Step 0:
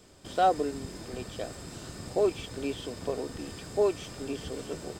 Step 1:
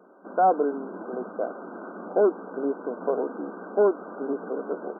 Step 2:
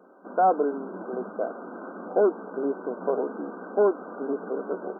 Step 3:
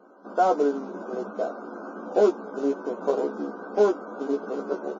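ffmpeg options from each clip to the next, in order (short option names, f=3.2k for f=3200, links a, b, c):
-filter_complex "[0:a]asplit=2[a][b];[b]highpass=f=720:p=1,volume=16dB,asoftclip=type=tanh:threshold=-13dB[c];[a][c]amix=inputs=2:normalize=0,lowpass=f=1.2k:p=1,volume=-6dB,afftfilt=real='re*between(b*sr/4096,180,1600)':imag='im*between(b*sr/4096,180,1600)':win_size=4096:overlap=0.75,dynaudnorm=f=180:g=5:m=3dB"
-af "flanger=delay=3.8:depth=1.5:regen=84:speed=0.52:shape=sinusoidal,volume=4.5dB"
-filter_complex "[0:a]acrusher=bits=6:mode=log:mix=0:aa=0.000001,asplit=2[a][b];[b]adelay=14,volume=-5dB[c];[a][c]amix=inputs=2:normalize=0" -ar 16000 -c:a wmav2 -b:a 32k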